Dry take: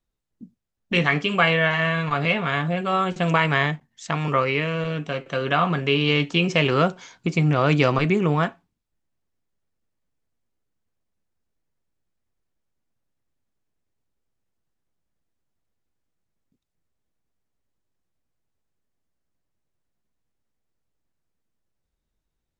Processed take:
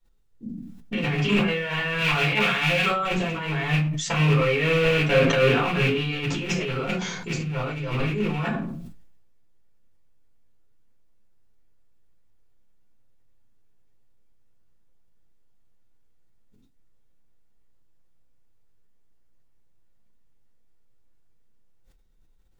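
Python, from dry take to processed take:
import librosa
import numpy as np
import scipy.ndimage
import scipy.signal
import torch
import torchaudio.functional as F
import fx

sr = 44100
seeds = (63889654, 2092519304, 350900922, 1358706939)

y = fx.rattle_buzz(x, sr, strikes_db=-30.0, level_db=-17.0)
y = fx.tilt_shelf(y, sr, db=-6.5, hz=1100.0, at=(1.98, 2.88))
y = fx.over_compress(y, sr, threshold_db=-25.0, ratio=-0.5)
y = fx.room_shoebox(y, sr, seeds[0], volume_m3=170.0, walls='furnished', distance_m=4.4)
y = fx.sustainer(y, sr, db_per_s=37.0)
y = F.gain(torch.from_numpy(y), -8.0).numpy()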